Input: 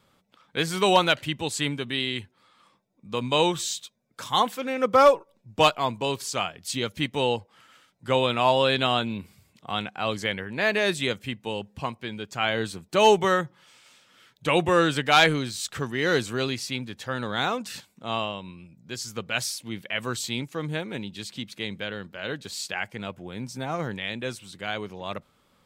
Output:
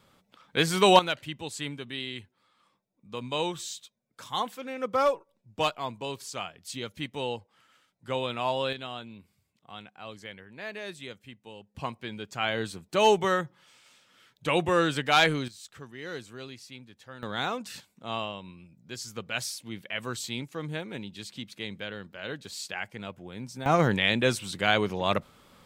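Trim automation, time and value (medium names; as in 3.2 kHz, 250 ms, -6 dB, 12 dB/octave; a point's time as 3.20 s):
+1.5 dB
from 0.99 s -8 dB
from 8.73 s -15 dB
from 11.75 s -3.5 dB
from 15.48 s -15 dB
from 17.23 s -4.5 dB
from 23.66 s +7.5 dB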